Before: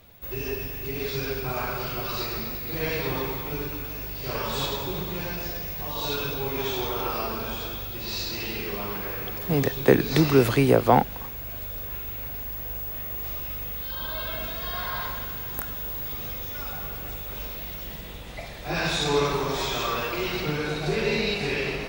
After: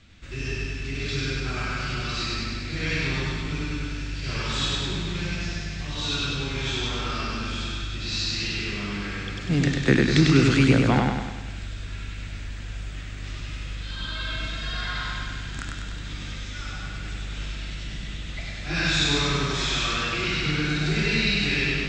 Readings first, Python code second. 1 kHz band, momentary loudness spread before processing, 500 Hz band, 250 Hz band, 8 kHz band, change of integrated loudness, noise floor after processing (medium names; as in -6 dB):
-4.0 dB, 12 LU, -5.5 dB, +3.0 dB, +4.0 dB, +1.0 dB, -35 dBFS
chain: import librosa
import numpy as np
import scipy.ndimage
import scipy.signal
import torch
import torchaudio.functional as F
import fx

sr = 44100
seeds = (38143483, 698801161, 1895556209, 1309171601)

y = scipy.signal.sosfilt(scipy.signal.ellip(4, 1.0, 50, 7700.0, 'lowpass', fs=sr, output='sos'), x)
y = fx.band_shelf(y, sr, hz=650.0, db=-11.5, octaves=1.7)
y = fx.echo_feedback(y, sr, ms=99, feedback_pct=53, wet_db=-3.0)
y = y * librosa.db_to_amplitude(3.0)